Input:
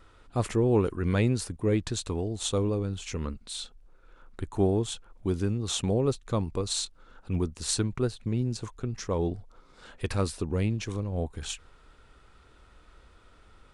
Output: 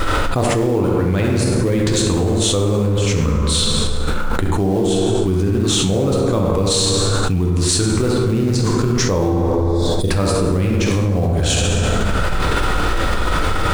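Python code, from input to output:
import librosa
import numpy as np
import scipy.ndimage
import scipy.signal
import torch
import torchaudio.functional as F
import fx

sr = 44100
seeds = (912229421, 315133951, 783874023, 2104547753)

p1 = fx.spec_box(x, sr, start_s=9.32, length_s=0.76, low_hz=730.0, high_hz=3300.0, gain_db=-25)
p2 = fx.quant_float(p1, sr, bits=2)
p3 = p1 + (p2 * librosa.db_to_amplitude(-4.0))
p4 = fx.echo_filtered(p3, sr, ms=68, feedback_pct=47, hz=2000.0, wet_db=-5.0)
p5 = fx.rev_plate(p4, sr, seeds[0], rt60_s=1.7, hf_ratio=0.55, predelay_ms=0, drr_db=0.5)
p6 = fx.env_flatten(p5, sr, amount_pct=100)
y = p6 * librosa.db_to_amplitude(-3.0)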